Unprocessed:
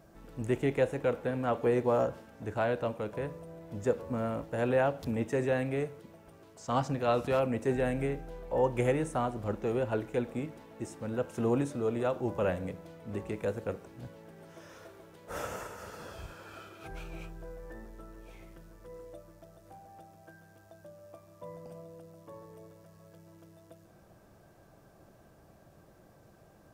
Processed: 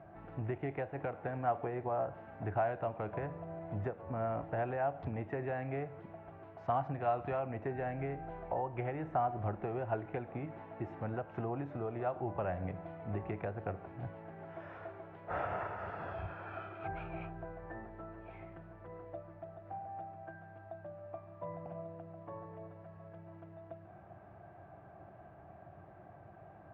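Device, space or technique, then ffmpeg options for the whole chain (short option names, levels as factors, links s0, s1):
bass amplifier: -af "acompressor=threshold=0.0158:ratio=6,highpass=75,equalizer=f=94:t=q:w=4:g=6,equalizer=f=240:t=q:w=4:g=-8,equalizer=f=490:t=q:w=4:g=-8,equalizer=f=720:t=q:w=4:g=10,lowpass=f=2300:w=0.5412,lowpass=f=2300:w=1.3066,volume=1.41"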